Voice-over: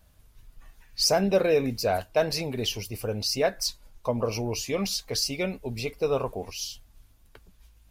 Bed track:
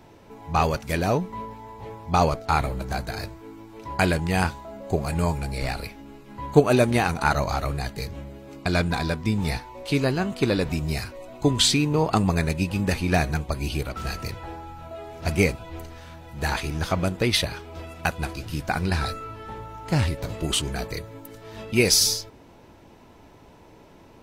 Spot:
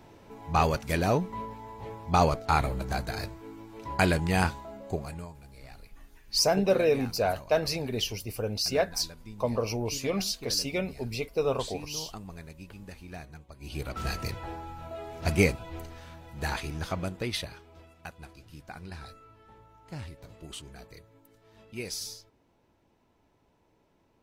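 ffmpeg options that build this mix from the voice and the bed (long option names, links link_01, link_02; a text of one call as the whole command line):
ffmpeg -i stem1.wav -i stem2.wav -filter_complex "[0:a]adelay=5350,volume=-1.5dB[link_01];[1:a]volume=17dB,afade=type=out:start_time=4.58:duration=0.7:silence=0.112202,afade=type=in:start_time=13.59:duration=0.43:silence=0.105925,afade=type=out:start_time=15.39:duration=2.59:silence=0.158489[link_02];[link_01][link_02]amix=inputs=2:normalize=0" out.wav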